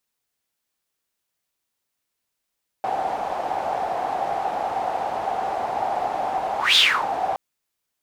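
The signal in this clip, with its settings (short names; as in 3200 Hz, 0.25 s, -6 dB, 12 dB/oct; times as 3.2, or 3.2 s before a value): whoosh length 4.52 s, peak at 3.92, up 0.18 s, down 0.32 s, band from 760 Hz, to 3600 Hz, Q 8.1, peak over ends 10.5 dB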